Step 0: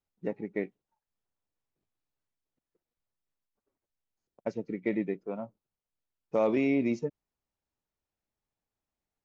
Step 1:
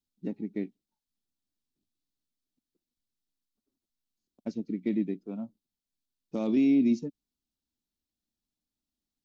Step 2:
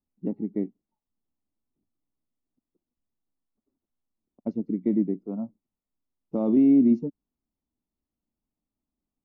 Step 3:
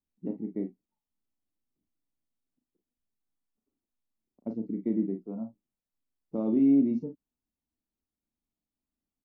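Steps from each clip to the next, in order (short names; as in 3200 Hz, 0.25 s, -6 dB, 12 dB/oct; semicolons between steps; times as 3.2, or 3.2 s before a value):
graphic EQ 125/250/500/1000/2000/4000 Hz -6/+10/-10/-8/-10/+7 dB
polynomial smoothing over 65 samples; gain +5 dB
early reflections 36 ms -7 dB, 52 ms -13.5 dB; gain -5.5 dB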